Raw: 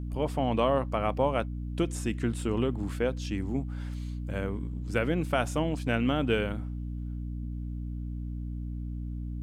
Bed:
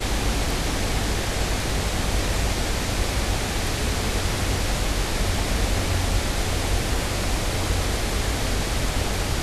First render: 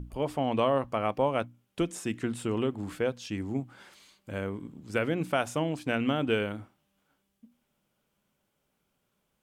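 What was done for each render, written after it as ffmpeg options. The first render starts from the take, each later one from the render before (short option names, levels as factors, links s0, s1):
-af "bandreject=f=60:t=h:w=6,bandreject=f=120:t=h:w=6,bandreject=f=180:t=h:w=6,bandreject=f=240:t=h:w=6,bandreject=f=300:t=h:w=6"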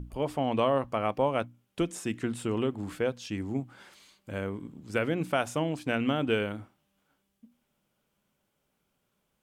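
-af anull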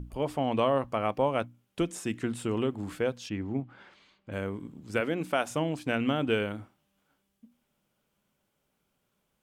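-filter_complex "[0:a]asettb=1/sr,asplit=3[s0][s1][s2];[s0]atrim=end=3.294[s3];[s1]atrim=start=3.29:end=4.32,asetpts=PTS-STARTPTS,afade=t=in:d=0.004:c=qsin,afade=t=out:st=1.026:d=0.004:c=qsin,lowpass=3100[s4];[s2]atrim=start=4.316[s5];[s3][s4]acrossfade=d=0.004:c1=hsin:c2=qsin[s6];[s6][s5]acrossfade=d=0.004:c1=qsin:c2=hsin,asettb=1/sr,asplit=3[s7][s8][s9];[s7]atrim=end=5.004[s10];[s8]atrim=start=5:end=5.51,asetpts=PTS-STARTPTS,afade=t=in:d=0.004:c=qsin,afade=t=out:st=0.506:d=0.004:c=qsin,equalizer=f=110:t=o:w=0.77:g=-13[s11];[s9]atrim=start=5.506[s12];[s10][s11]acrossfade=d=0.004:c1=hsin:c2=qsin[s13];[s13][s12]acrossfade=d=0.004:c1=qsin:c2=hsin"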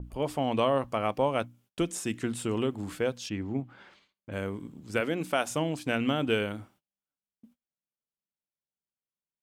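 -af "agate=range=0.0398:threshold=0.00112:ratio=16:detection=peak,adynamicequalizer=threshold=0.00447:dfrequency=3200:dqfactor=0.7:tfrequency=3200:tqfactor=0.7:attack=5:release=100:ratio=0.375:range=2.5:mode=boostabove:tftype=highshelf"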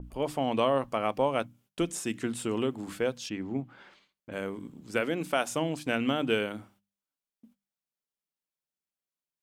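-af "equalizer=f=90:w=2.2:g=-9,bandreject=f=50:t=h:w=6,bandreject=f=100:t=h:w=6,bandreject=f=150:t=h:w=6,bandreject=f=200:t=h:w=6"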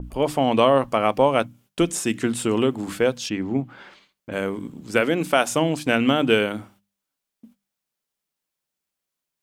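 -af "volume=2.82"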